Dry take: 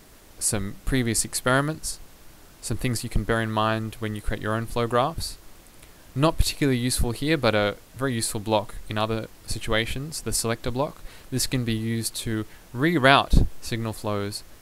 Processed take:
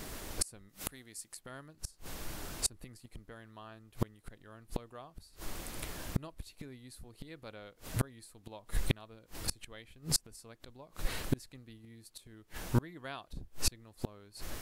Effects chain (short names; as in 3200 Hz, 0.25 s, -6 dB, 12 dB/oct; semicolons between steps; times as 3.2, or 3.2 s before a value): flipped gate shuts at -21 dBFS, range -34 dB; 0.69–1.37 tilt +2 dB/oct; gain +6.5 dB